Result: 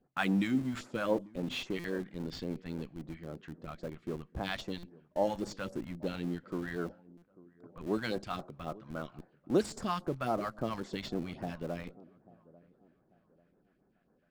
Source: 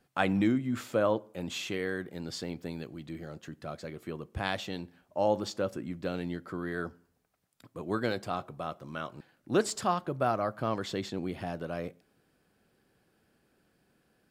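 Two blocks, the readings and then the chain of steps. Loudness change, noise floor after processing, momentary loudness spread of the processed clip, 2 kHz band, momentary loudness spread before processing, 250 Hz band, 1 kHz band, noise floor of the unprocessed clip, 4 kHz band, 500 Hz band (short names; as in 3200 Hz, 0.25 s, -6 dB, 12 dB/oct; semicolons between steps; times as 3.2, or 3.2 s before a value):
-3.0 dB, -72 dBFS, 13 LU, -3.0 dB, 14 LU, -1.5 dB, -5.0 dB, -73 dBFS, -3.0 dB, -4.0 dB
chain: low-pass opened by the level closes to 1700 Hz, open at -24 dBFS; de-esser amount 95%; bell 95 Hz -13 dB 0.66 oct; phaser stages 2, 3.7 Hz, lowest notch 360–3200 Hz; dark delay 0.842 s, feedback 34%, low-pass 870 Hz, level -19.5 dB; in parallel at -11 dB: Schmitt trigger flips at -40 dBFS; on the sum: stuck buffer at 1.79/4.78/7.17, samples 256, times 8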